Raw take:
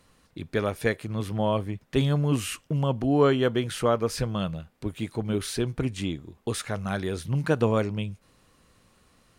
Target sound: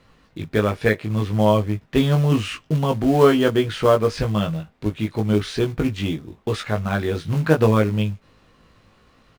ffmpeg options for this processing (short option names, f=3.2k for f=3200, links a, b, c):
-filter_complex "[0:a]lowpass=4.1k,asplit=2[a][b];[b]acrusher=bits=3:mode=log:mix=0:aa=0.000001,volume=-6dB[c];[a][c]amix=inputs=2:normalize=0,asplit=2[d][e];[e]adelay=19,volume=-4dB[f];[d][f]amix=inputs=2:normalize=0,volume=1.5dB"